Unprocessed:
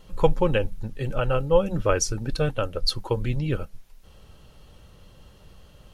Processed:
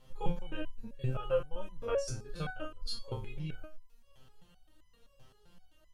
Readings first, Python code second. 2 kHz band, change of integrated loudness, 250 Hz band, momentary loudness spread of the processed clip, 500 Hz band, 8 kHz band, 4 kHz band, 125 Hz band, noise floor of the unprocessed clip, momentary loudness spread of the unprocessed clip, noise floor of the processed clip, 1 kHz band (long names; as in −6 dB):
−13.0 dB, −13.0 dB, −14.5 dB, 11 LU, −13.0 dB, −18.5 dB, −14.0 dB, −13.0 dB, −52 dBFS, 9 LU, −65 dBFS, −14.0 dB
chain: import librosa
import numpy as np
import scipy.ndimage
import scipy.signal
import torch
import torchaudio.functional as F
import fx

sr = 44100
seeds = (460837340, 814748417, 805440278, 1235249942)

y = fx.spec_steps(x, sr, hold_ms=50)
y = fx.resonator_held(y, sr, hz=7.7, low_hz=130.0, high_hz=1000.0)
y = y * librosa.db_to_amplitude(3.5)